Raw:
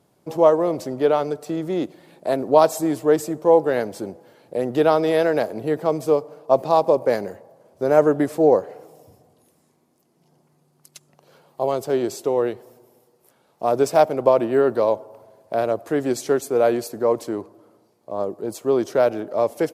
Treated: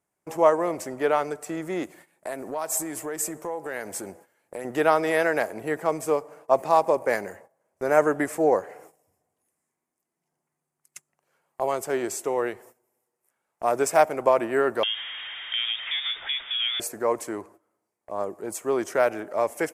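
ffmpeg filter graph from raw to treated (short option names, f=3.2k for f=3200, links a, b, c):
-filter_complex "[0:a]asettb=1/sr,asplit=3[a][b][c];[a]atrim=end=1.834[d];[b]atrim=start=1.83:end=4.65,asetpts=PTS-STARTPTS,afade=t=in:d=0.004:c=qsin,afade=t=out:st=2.816:d=0.004:c=qsin,highshelf=f=5.9k:g=6.5,acompressor=threshold=-25dB:ratio=4:attack=3.2:release=140:knee=1:detection=peak[e];[c]atrim=start=4.646[f];[d][e]acrossfade=d=0.004:c1=hsin:c2=qsin[g];[g][f]acrossfade=d=0.004:c1=qsin:c2=hsin,asettb=1/sr,asplit=3[h][i][j];[h]atrim=end=14.834[k];[i]atrim=start=14.83:end=16.8,asetpts=PTS-STARTPTS,afade=t=in:d=0.004:c=qsin,afade=t=out:st=1.966:d=0.004:c=qsin,aeval=exprs='val(0)+0.5*0.0316*sgn(val(0))':c=same,acompressor=threshold=-20dB:ratio=4:attack=3.2:release=140:knee=1:detection=peak,lowpass=f=3.2k:t=q:w=0.5098,lowpass=f=3.2k:t=q:w=0.6013,lowpass=f=3.2k:t=q:w=0.9,lowpass=f=3.2k:t=q:w=2.563,afreqshift=-3800[l];[j]atrim=start=16.796[m];[k][l]acrossfade=d=0.004:c1=hsin:c2=qsin[n];[n][m]acrossfade=d=0.004:c1=qsin:c2=hsin,agate=range=-16dB:threshold=-44dB:ratio=16:detection=peak,equalizer=f=125:t=o:w=1:g=-9,equalizer=f=250:t=o:w=1:g=-5,equalizer=f=500:t=o:w=1:g=-5,equalizer=f=2k:t=o:w=1:g=8,equalizer=f=4k:t=o:w=1:g=-11,equalizer=f=8k:t=o:w=1:g=8"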